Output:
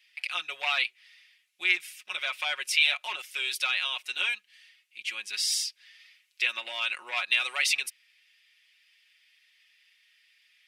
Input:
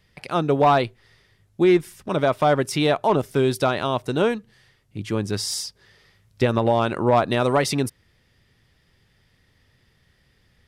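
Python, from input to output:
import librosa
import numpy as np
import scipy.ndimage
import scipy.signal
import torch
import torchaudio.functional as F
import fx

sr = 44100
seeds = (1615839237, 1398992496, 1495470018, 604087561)

y = fx.highpass_res(x, sr, hz=2500.0, q=3.6)
y = y + 0.7 * np.pad(y, (int(5.5 * sr / 1000.0), 0))[:len(y)]
y = y * librosa.db_to_amplitude(-3.5)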